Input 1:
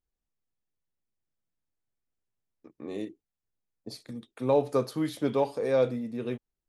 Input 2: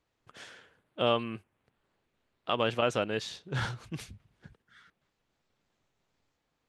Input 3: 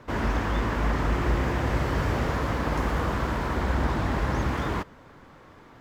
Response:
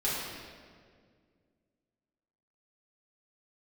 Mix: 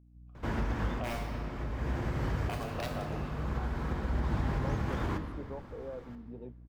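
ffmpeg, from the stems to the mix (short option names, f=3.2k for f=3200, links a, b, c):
-filter_complex "[0:a]aeval=exprs='val(0)+0.00794*(sin(2*PI*60*n/s)+sin(2*PI*2*60*n/s)/2+sin(2*PI*3*60*n/s)/3+sin(2*PI*4*60*n/s)/4+sin(2*PI*5*60*n/s)/5)':c=same,adelay=150,volume=-12dB[a];[1:a]asplit=3[b][c][d];[b]bandpass=f=730:t=q:w=8,volume=0dB[e];[c]bandpass=f=1.09k:t=q:w=8,volume=-6dB[f];[d]bandpass=f=2.44k:t=q:w=8,volume=-9dB[g];[e][f][g]amix=inputs=3:normalize=0,aeval=exprs='(mod(23.7*val(0)+1,2)-1)/23.7':c=same,volume=1.5dB,asplit=3[h][i][j];[i]volume=-16dB[k];[2:a]lowshelf=f=200:g=7.5,acompressor=threshold=-23dB:ratio=6,adelay=350,volume=-6.5dB,asplit=2[l][m];[m]volume=-13dB[n];[j]apad=whole_len=271279[o];[l][o]sidechaincompress=threshold=-55dB:ratio=3:attack=16:release=567[p];[a][h]amix=inputs=2:normalize=0,afwtdn=0.00708,acompressor=threshold=-39dB:ratio=6,volume=0dB[q];[3:a]atrim=start_sample=2205[r];[k][n]amix=inputs=2:normalize=0[s];[s][r]afir=irnorm=-1:irlink=0[t];[p][q][t]amix=inputs=3:normalize=0,aeval=exprs='val(0)+0.00126*(sin(2*PI*60*n/s)+sin(2*PI*2*60*n/s)/2+sin(2*PI*3*60*n/s)/3+sin(2*PI*4*60*n/s)/4+sin(2*PI*5*60*n/s)/5)':c=same"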